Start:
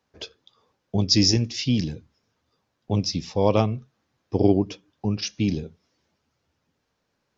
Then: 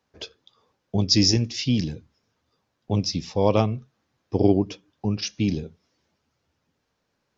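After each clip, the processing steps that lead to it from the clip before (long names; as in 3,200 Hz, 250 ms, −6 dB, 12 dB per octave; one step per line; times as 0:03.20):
no processing that can be heard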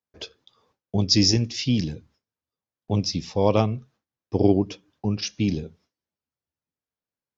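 noise gate with hold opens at −58 dBFS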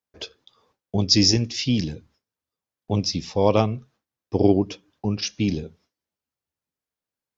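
parametric band 130 Hz −2.5 dB 1.9 octaves
level +2 dB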